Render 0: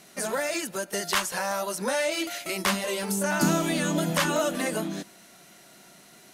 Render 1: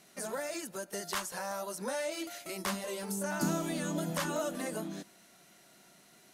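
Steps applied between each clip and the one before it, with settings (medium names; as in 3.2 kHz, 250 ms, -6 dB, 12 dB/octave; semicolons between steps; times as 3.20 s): dynamic bell 2.6 kHz, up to -5 dB, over -43 dBFS, Q 0.95; trim -8 dB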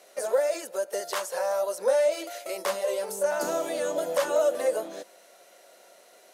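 in parallel at -7.5 dB: saturation -29.5 dBFS, distortion -15 dB; on the sum: resonant high-pass 520 Hz, resonance Q 5.5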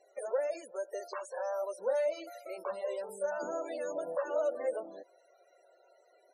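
loudest bins only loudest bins 32; trim -8 dB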